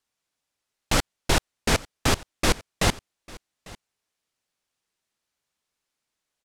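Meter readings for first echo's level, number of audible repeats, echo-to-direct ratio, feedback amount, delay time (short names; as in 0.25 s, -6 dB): -22.0 dB, 1, -22.0 dB, no steady repeat, 0.848 s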